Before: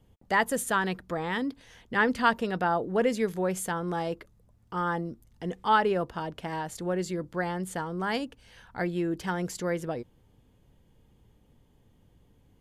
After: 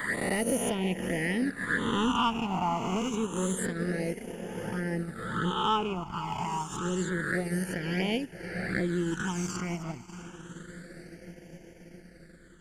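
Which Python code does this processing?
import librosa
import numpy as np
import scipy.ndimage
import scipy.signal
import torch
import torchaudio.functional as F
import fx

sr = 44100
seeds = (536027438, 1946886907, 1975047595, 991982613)

p1 = fx.spec_swells(x, sr, rise_s=1.64)
p2 = fx.env_flanger(p1, sr, rest_ms=4.8, full_db=-22.5)
p3 = fx.echo_diffused(p2, sr, ms=596, feedback_pct=66, wet_db=-13)
p4 = fx.transient(p3, sr, attack_db=3, sustain_db=-9)
p5 = 10.0 ** (-23.0 / 20.0) * (np.abs((p4 / 10.0 ** (-23.0 / 20.0) + 3.0) % 4.0 - 2.0) - 1.0)
p6 = p4 + (p5 * 10.0 ** (-11.5 / 20.0))
y = fx.phaser_stages(p6, sr, stages=8, low_hz=500.0, high_hz=1200.0, hz=0.28, feedback_pct=20)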